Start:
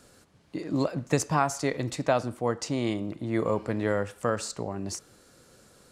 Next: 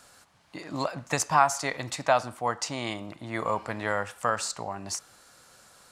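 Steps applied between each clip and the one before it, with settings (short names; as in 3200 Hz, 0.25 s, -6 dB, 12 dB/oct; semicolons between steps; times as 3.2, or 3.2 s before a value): resonant low shelf 580 Hz -9.5 dB, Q 1.5; gain +3.5 dB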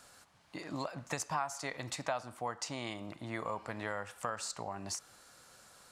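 compressor 2.5:1, threshold -33 dBFS, peak gain reduction 12.5 dB; gain -3.5 dB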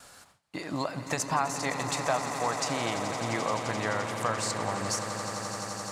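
hard clip -22 dBFS, distortion -29 dB; swelling echo 86 ms, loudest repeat 8, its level -13 dB; gate with hold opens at -50 dBFS; gain +7 dB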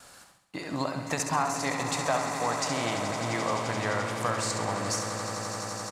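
feedback echo 68 ms, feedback 52%, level -7.5 dB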